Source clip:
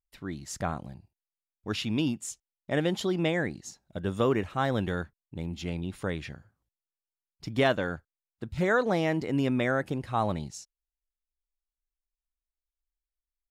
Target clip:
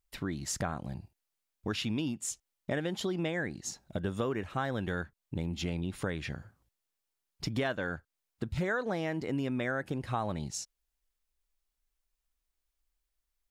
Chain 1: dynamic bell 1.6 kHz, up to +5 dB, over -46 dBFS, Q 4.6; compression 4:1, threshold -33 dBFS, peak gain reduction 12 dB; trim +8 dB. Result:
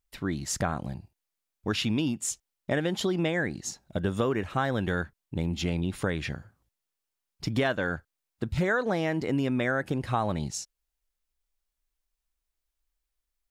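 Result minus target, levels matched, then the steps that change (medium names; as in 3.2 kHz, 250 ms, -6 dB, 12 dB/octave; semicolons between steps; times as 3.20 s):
compression: peak gain reduction -5.5 dB
change: compression 4:1, threshold -40.5 dBFS, peak gain reduction 18 dB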